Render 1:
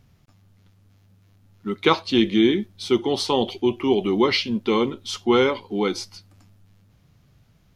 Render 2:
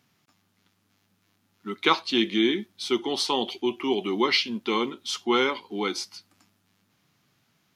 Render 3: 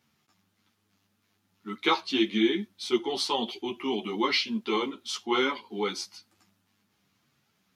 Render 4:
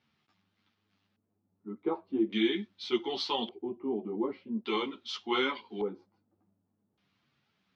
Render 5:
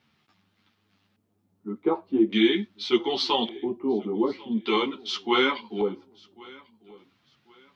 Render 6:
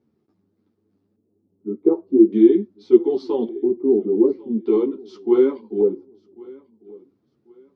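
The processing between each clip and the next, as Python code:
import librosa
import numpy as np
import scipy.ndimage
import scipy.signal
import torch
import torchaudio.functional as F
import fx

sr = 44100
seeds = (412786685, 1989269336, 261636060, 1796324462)

y1 = scipy.signal.sosfilt(scipy.signal.butter(2, 300.0, 'highpass', fs=sr, output='sos'), x)
y1 = fx.peak_eq(y1, sr, hz=530.0, db=-8.5, octaves=0.96)
y2 = fx.ensemble(y1, sr)
y3 = fx.filter_lfo_lowpass(y2, sr, shape='square', hz=0.43, low_hz=550.0, high_hz=3900.0, q=1.1)
y3 = scipy.signal.sosfilt(scipy.signal.butter(2, 6700.0, 'lowpass', fs=sr, output='sos'), y3)
y3 = F.gain(torch.from_numpy(y3), -4.0).numpy()
y4 = fx.echo_feedback(y3, sr, ms=1093, feedback_pct=29, wet_db=-23.5)
y4 = F.gain(torch.from_numpy(y4), 7.5).numpy()
y5 = fx.curve_eq(y4, sr, hz=(160.0, 390.0, 690.0, 3100.0, 4900.0), db=(0, 12, -5, -24, -15))
y5 = F.gain(torch.from_numpy(y5), -1.0).numpy()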